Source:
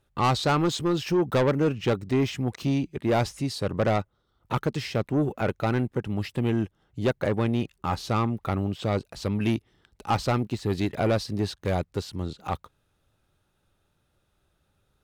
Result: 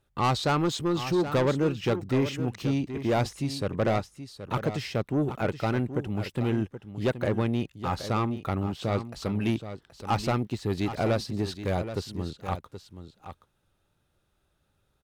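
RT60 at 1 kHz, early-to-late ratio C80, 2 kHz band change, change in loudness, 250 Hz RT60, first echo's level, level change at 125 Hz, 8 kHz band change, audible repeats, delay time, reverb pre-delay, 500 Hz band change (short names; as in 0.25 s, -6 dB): none, none, -1.5 dB, -1.5 dB, none, -11.0 dB, -1.5 dB, -1.5 dB, 1, 0.775 s, none, -1.5 dB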